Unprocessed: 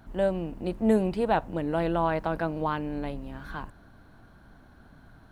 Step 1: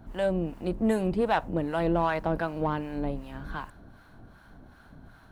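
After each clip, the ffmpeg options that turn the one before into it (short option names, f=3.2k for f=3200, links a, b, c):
-filter_complex "[0:a]acrossover=split=790[a][b];[a]aeval=exprs='val(0)*(1-0.7/2+0.7/2*cos(2*PI*2.6*n/s))':c=same[c];[b]aeval=exprs='val(0)*(1-0.7/2-0.7/2*cos(2*PI*2.6*n/s))':c=same[d];[c][d]amix=inputs=2:normalize=0,asplit=2[e][f];[f]asoftclip=type=tanh:threshold=-30.5dB,volume=-6dB[g];[e][g]amix=inputs=2:normalize=0,volume=1.5dB"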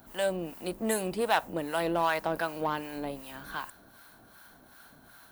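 -af "aemphasis=mode=production:type=riaa"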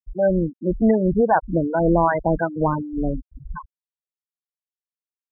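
-af "aemphasis=mode=reproduction:type=riaa,afftfilt=real='re*gte(hypot(re,im),0.1)':imag='im*gte(hypot(re,im),0.1)':win_size=1024:overlap=0.75,volume=8.5dB"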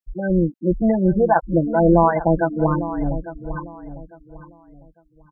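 -filter_complex "[0:a]aecho=1:1:5.9:0.83,asplit=2[a][b];[b]adelay=851,lowpass=f=1.9k:p=1,volume=-13dB,asplit=2[c][d];[d]adelay=851,lowpass=f=1.9k:p=1,volume=0.28,asplit=2[e][f];[f]adelay=851,lowpass=f=1.9k:p=1,volume=0.28[g];[a][c][e][g]amix=inputs=4:normalize=0,volume=-1.5dB"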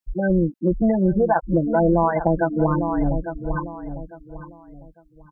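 -af "acompressor=threshold=-20dB:ratio=3,volume=3.5dB"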